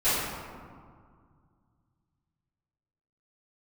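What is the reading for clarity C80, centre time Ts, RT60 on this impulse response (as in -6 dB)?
0.0 dB, 0.123 s, 2.0 s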